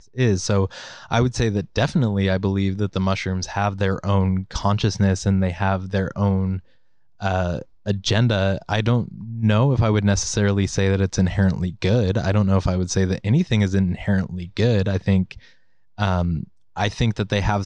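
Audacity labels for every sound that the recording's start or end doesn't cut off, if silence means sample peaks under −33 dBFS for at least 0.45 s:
7.220000	15.370000	sound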